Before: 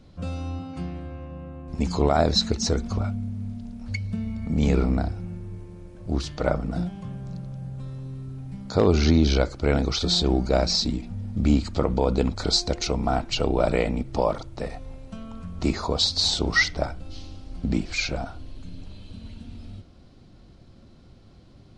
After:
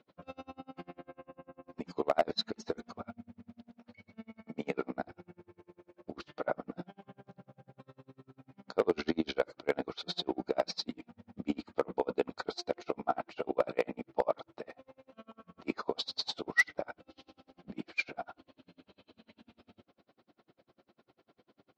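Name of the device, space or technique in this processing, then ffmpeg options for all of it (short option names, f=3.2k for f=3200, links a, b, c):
helicopter radio: -filter_complex "[0:a]highpass=380,lowpass=2.8k,aeval=exprs='val(0)*pow(10,-36*(0.5-0.5*cos(2*PI*10*n/s))/20)':c=same,asoftclip=type=hard:threshold=-17dB,asettb=1/sr,asplit=3[a][b][c];[a]atrim=end=3.774[d];[b]atrim=start=3.77:end=4.94,asetpts=PTS-STARTPTS,afade=t=in:d=0.004:c=qsin,afade=t=out:st=1.166:d=0.004:c=qsin,highpass=f=160:p=1[e];[c]atrim=start=4.936[f];[d][e]acrossfade=d=0.004:c1=hsin:c2=qsin[g];[g][f]acrossfade=d=0.004:c1=qsin:c2=hsin"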